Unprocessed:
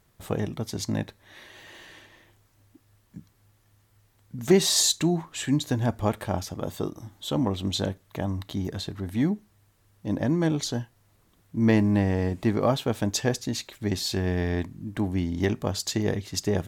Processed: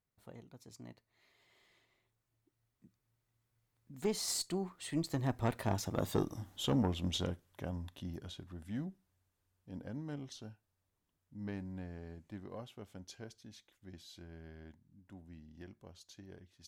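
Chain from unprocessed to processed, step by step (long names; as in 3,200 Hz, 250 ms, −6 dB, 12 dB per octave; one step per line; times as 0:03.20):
source passing by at 0:06.21, 35 m/s, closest 17 metres
tube saturation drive 21 dB, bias 0.5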